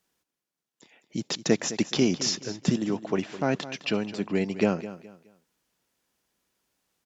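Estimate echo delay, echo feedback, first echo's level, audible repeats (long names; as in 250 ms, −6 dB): 210 ms, 30%, −14.5 dB, 2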